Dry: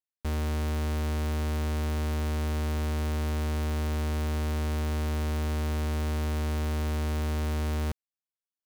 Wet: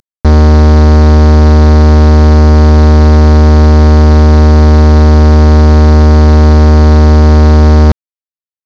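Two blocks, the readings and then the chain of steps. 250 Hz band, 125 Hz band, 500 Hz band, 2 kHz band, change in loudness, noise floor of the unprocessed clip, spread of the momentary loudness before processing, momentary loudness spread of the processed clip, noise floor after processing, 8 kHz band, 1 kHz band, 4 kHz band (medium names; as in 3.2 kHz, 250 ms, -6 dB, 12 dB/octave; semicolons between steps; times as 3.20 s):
+25.5 dB, +25.5 dB, +25.0 dB, +19.0 dB, +25.0 dB, under -85 dBFS, 0 LU, 0 LU, under -85 dBFS, +13.5 dB, +24.0 dB, +18.0 dB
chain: CVSD coder 32 kbps; loudness maximiser +31 dB; trim -1 dB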